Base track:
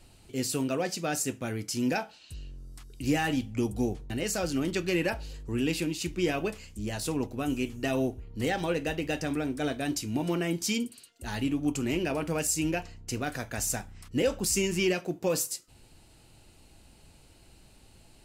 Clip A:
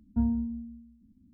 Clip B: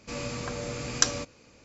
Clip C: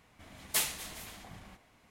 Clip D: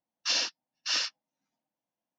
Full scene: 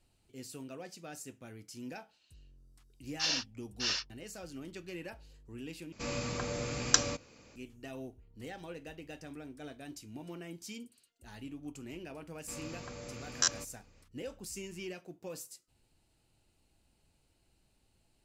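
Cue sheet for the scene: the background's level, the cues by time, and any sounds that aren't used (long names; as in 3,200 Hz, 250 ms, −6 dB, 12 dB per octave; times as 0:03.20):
base track −16 dB
0:02.94: mix in D −4.5 dB
0:05.92: overwrite with B −2 dB
0:12.40: mix in B −11 dB + buffer that repeats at 0:01.02, times 4
not used: A, C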